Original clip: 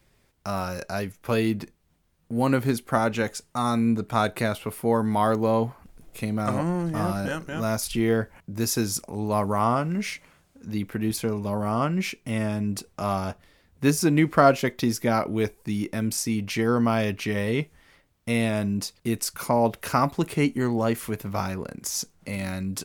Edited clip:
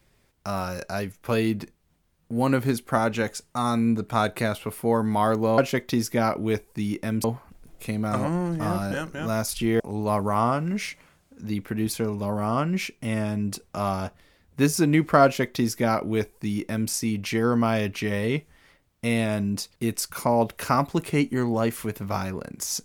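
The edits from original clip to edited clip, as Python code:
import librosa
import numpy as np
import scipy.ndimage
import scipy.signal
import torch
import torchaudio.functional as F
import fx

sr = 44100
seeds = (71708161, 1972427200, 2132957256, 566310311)

y = fx.edit(x, sr, fx.cut(start_s=8.14, length_s=0.9),
    fx.duplicate(start_s=14.48, length_s=1.66, to_s=5.58), tone=tone)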